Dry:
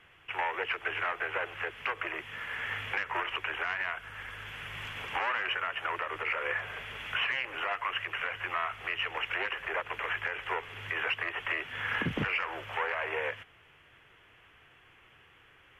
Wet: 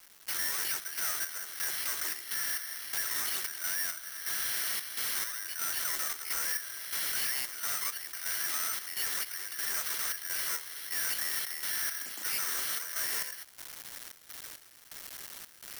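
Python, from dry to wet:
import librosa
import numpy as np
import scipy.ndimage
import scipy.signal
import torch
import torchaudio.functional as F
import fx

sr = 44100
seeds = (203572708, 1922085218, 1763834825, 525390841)

p1 = fx.lower_of_two(x, sr, delay_ms=0.59)
p2 = scipy.signal.sosfilt(scipy.signal.butter(4, 350.0, 'highpass', fs=sr, output='sos'), p1)
p3 = fx.peak_eq(p2, sr, hz=450.0, db=-11.5, octaves=0.81)
p4 = fx.over_compress(p3, sr, threshold_db=-46.0, ratio=-1.0)
p5 = p3 + (p4 * 10.0 ** (-0.5 / 20.0))
p6 = fx.quant_dither(p5, sr, seeds[0], bits=8, dither='none')
p7 = fx.step_gate(p6, sr, bpm=169, pattern='...xxxxxx..xxx.', floor_db=-12.0, edge_ms=4.5)
p8 = 10.0 ** (-37.0 / 20.0) * np.tanh(p7 / 10.0 ** (-37.0 / 20.0))
y = (np.kron(p8[::6], np.eye(6)[0]) * 6)[:len(p8)]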